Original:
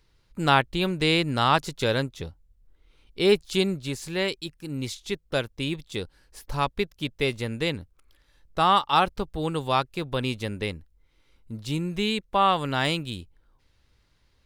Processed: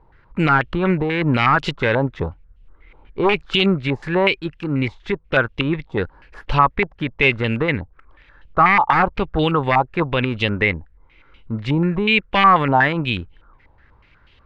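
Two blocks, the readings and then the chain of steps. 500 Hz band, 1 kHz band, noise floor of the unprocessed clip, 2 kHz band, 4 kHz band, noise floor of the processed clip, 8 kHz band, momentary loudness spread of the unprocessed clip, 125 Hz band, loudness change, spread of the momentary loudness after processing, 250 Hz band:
+5.5 dB, +7.0 dB, −66 dBFS, +11.0 dB, +2.5 dB, −54 dBFS, below −10 dB, 14 LU, +8.5 dB, +7.0 dB, 12 LU, +8.0 dB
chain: wavefolder on the positive side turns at −18.5 dBFS
boost into a limiter +18 dB
low-pass on a step sequencer 8.2 Hz 860–2,900 Hz
level −7 dB

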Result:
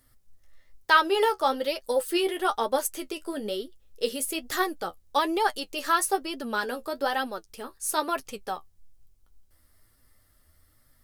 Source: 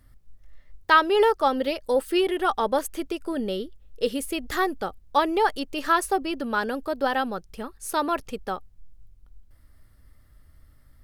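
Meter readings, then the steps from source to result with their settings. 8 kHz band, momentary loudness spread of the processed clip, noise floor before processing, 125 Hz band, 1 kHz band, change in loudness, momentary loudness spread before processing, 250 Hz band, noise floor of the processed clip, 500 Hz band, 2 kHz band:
+5.0 dB, 12 LU, −56 dBFS, can't be measured, −2.5 dB, −2.5 dB, 13 LU, −5.0 dB, −63 dBFS, −3.5 dB, −1.5 dB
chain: bass and treble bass −8 dB, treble +8 dB
flanger 1.1 Hz, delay 7.3 ms, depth 5.9 ms, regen +40%
level +1.5 dB

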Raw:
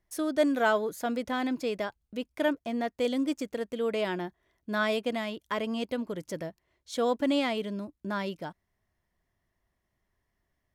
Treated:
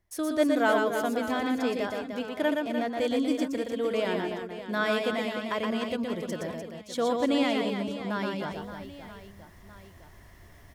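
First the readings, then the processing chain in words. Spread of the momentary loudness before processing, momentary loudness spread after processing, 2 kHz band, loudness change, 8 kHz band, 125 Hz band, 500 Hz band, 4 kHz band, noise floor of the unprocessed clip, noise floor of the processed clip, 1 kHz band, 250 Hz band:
12 LU, 11 LU, +2.5 dB, +2.0 dB, +2.0 dB, +3.0 dB, +2.0 dB, +2.0 dB, −80 dBFS, −52 dBFS, +2.0 dB, +2.5 dB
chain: parametric band 88 Hz +10 dB 0.23 octaves
reversed playback
upward compression, threshold −34 dBFS
reversed playback
reverse bouncing-ball delay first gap 120 ms, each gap 1.5×, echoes 5

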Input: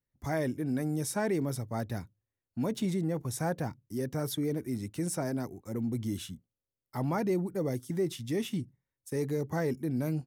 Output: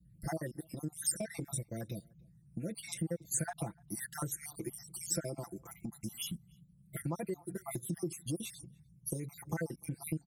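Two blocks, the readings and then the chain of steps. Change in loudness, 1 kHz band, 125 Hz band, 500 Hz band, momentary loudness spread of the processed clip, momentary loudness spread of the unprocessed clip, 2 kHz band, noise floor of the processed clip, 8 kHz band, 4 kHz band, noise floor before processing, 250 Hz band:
−6.5 dB, −8.0 dB, −7.0 dB, −10.0 dB, 10 LU, 7 LU, −6.0 dB, −64 dBFS, +4.5 dB, −3.0 dB, below −85 dBFS, −9.5 dB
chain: time-frequency cells dropped at random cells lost 67%
noise in a band 54–170 Hz −64 dBFS
downward compressor 10 to 1, threshold −39 dBFS, peak gain reduction 13.5 dB
parametric band 10,000 Hz +14.5 dB 0.56 octaves
comb filter 5.9 ms, depth 88%
slap from a distant wall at 51 metres, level −28 dB
level +2 dB

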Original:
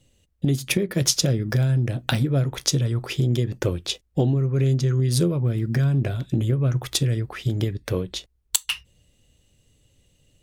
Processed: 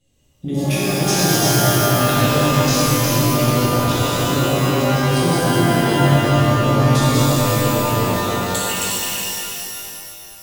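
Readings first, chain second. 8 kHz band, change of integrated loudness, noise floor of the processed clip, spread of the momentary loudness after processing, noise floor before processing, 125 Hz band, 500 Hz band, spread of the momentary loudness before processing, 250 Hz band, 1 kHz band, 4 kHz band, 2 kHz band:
+7.5 dB, +6.5 dB, −39 dBFS, 9 LU, −65 dBFS, +3.5 dB, +10.0 dB, 7 LU, +8.0 dB, +21.0 dB, +7.5 dB, +11.5 dB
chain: feedback delay that plays each chunk backwards 181 ms, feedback 62%, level −1.5 dB
reverb with rising layers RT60 2.4 s, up +12 semitones, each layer −2 dB, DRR −9.5 dB
level −8.5 dB

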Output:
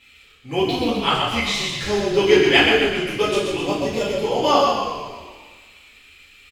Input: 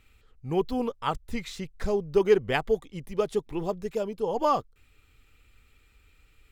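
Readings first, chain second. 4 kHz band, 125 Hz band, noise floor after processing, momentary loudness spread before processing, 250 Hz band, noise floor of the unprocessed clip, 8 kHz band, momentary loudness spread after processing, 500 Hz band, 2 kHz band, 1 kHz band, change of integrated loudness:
+21.0 dB, +7.0 dB, −50 dBFS, 12 LU, +9.5 dB, −62 dBFS, can't be measured, 11 LU, +7.0 dB, +16.5 dB, +9.0 dB, +9.5 dB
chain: meter weighting curve D
echo with shifted repeats 128 ms, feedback 55%, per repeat −39 Hz, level −4 dB
coupled-rooms reverb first 0.56 s, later 1.8 s, from −17 dB, DRR −8.5 dB
level −2 dB

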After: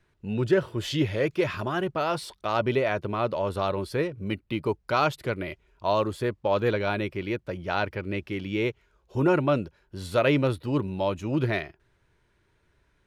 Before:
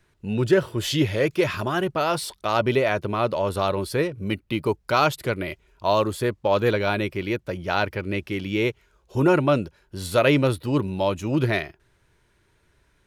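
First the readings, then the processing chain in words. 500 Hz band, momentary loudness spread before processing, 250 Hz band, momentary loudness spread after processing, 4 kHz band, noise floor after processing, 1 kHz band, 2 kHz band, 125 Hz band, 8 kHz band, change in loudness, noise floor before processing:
−3.5 dB, 8 LU, −3.5 dB, 8 LU, −5.5 dB, −69 dBFS, −3.5 dB, −4.5 dB, −3.5 dB, can't be measured, −3.5 dB, −65 dBFS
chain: high-shelf EQ 6,500 Hz −10 dB
level −3.5 dB

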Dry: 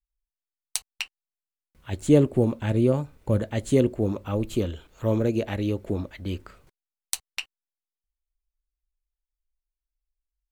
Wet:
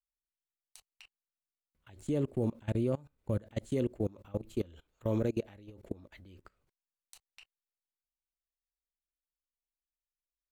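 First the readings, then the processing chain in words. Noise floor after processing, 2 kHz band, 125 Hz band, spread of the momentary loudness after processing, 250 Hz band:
below −85 dBFS, −16.0 dB, −10.5 dB, 14 LU, −11.0 dB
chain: output level in coarse steps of 24 dB
level −5.5 dB

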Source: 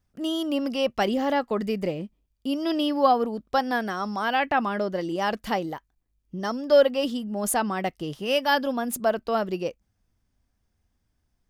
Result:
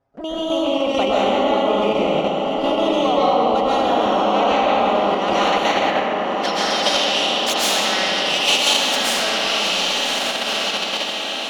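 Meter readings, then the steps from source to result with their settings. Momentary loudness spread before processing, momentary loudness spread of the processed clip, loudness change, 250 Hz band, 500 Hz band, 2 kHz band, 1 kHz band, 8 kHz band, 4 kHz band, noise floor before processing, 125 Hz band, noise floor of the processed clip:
10 LU, 5 LU, +7.5 dB, +3.5 dB, +6.5 dB, +9.0 dB, +8.5 dB, +12.0 dB, +16.5 dB, −75 dBFS, +3.0 dB, −25 dBFS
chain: stylus tracing distortion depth 0.17 ms
band-pass filter sweep 670 Hz → 3,400 Hz, 0:04.62–0:06.23
parametric band 63 Hz +10.5 dB 1.5 octaves
flanger swept by the level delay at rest 7.4 ms, full sweep at −37.5 dBFS
on a send: feedback delay with all-pass diffusion 1,162 ms, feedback 55%, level −7 dB
on the sum: comb and all-pass reverb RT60 1.6 s, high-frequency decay 0.9×, pre-delay 95 ms, DRR −10 dB
in parallel at 0 dB: output level in coarse steps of 13 dB
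on the sum: every bin compressed towards the loudest bin 2 to 1

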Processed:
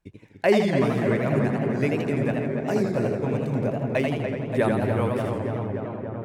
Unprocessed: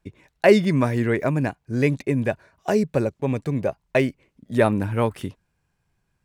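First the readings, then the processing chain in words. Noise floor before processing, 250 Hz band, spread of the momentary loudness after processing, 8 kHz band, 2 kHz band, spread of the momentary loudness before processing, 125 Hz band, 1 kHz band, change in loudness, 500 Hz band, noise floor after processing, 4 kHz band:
−73 dBFS, −1.0 dB, 7 LU, can't be measured, −2.5 dB, 10 LU, −1.0 dB, −1.0 dB, −2.0 dB, −1.5 dB, −46 dBFS, −2.0 dB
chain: on a send: feedback echo with a low-pass in the loop 289 ms, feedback 82%, low-pass 2,700 Hz, level −6 dB
on the sum: feedback echo with a swinging delay time 83 ms, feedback 54%, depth 160 cents, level −4 dB
level −5.5 dB

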